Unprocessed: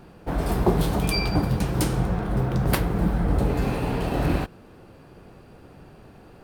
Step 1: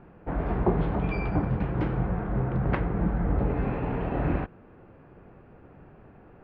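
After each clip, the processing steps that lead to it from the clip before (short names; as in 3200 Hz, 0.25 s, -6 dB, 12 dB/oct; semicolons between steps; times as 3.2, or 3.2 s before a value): LPF 2300 Hz 24 dB/oct; gain -3.5 dB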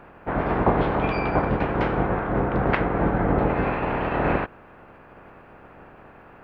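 spectral limiter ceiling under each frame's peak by 16 dB; gain +4 dB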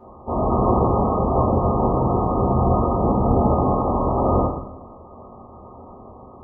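soft clip -16.5 dBFS, distortion -15 dB; brick-wall FIR low-pass 1300 Hz; reverb RT60 0.85 s, pre-delay 6 ms, DRR -9 dB; gain -4.5 dB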